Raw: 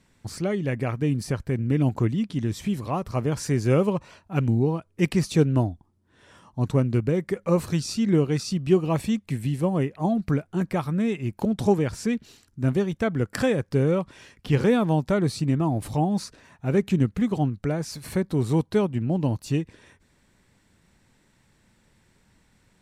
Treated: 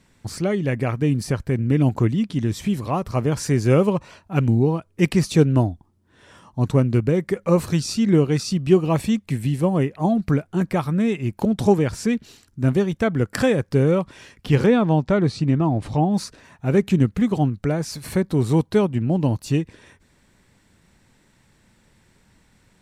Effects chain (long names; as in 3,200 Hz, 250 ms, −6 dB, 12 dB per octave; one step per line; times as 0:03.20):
0:14.66–0:16.14: high-frequency loss of the air 92 metres
level +4 dB